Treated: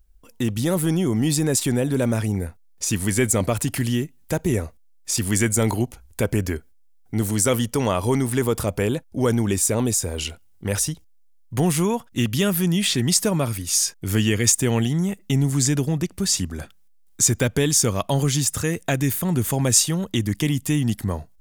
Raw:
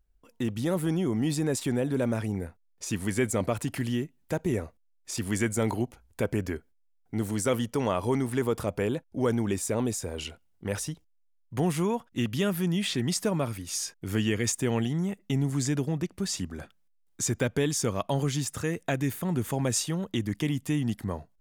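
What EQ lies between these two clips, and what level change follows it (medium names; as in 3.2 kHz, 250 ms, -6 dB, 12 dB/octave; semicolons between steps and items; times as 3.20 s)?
bass shelf 95 Hz +9.5 dB; treble shelf 4 kHz +10 dB; +4.5 dB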